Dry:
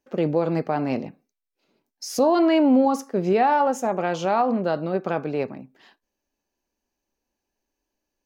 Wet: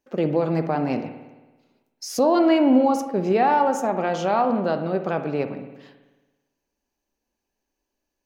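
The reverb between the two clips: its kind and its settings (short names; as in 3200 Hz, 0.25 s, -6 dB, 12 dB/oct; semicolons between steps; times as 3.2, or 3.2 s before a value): spring tank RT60 1.2 s, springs 55 ms, chirp 60 ms, DRR 8.5 dB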